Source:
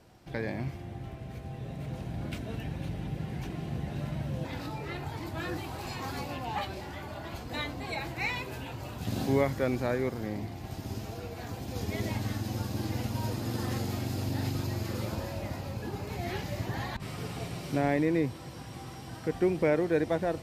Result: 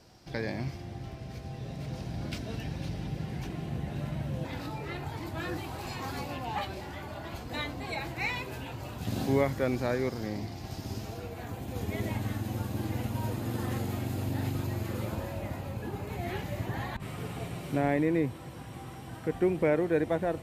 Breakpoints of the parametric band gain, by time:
parametric band 5,100 Hz 0.72 octaves
0:02.93 +9.5 dB
0:03.72 −1 dB
0:09.62 −1 dB
0:10.05 +7.5 dB
0:10.58 +7.5 dB
0:11.10 +1 dB
0:11.46 −9 dB

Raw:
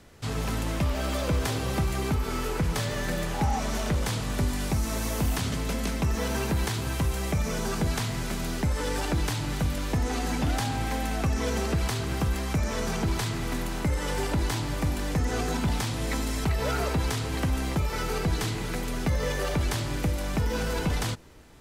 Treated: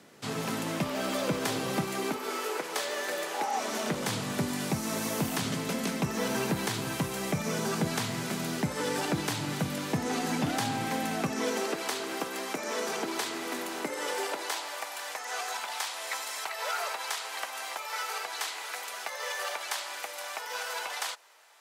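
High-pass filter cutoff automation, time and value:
high-pass filter 24 dB per octave
0:01.79 160 Hz
0:02.42 370 Hz
0:03.51 370 Hz
0:04.08 140 Hz
0:11.12 140 Hz
0:11.69 300 Hz
0:13.86 300 Hz
0:14.91 680 Hz

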